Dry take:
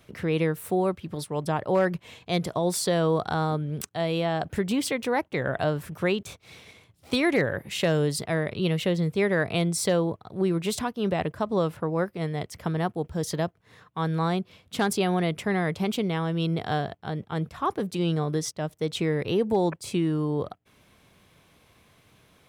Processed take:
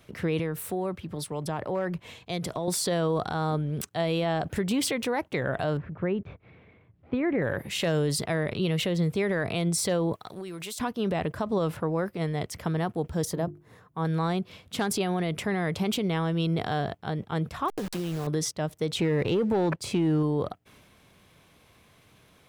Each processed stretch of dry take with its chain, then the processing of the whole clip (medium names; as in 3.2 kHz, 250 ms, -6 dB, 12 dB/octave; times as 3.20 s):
0.39–2.68 s: compression 3:1, threshold -28 dBFS + three bands expanded up and down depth 40%
5.77–7.42 s: low-pass 2 kHz 24 dB/octave + peaking EQ 1.2 kHz -7.5 dB 2.7 oct
10.13–10.80 s: tilt EQ +3 dB/octave + compression 10:1, threshold -34 dBFS
13.25–14.05 s: peaking EQ 3.5 kHz -11.5 dB 2.6 oct + hum notches 50/100/150/200/250/300/350/400 Hz
17.68–18.27 s: send-on-delta sampling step -32 dBFS + compression, threshold -27 dBFS
18.99–20.23 s: treble shelf 7.3 kHz -11 dB + waveshaping leveller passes 1
whole clip: peak limiter -19 dBFS; transient shaper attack +1 dB, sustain +5 dB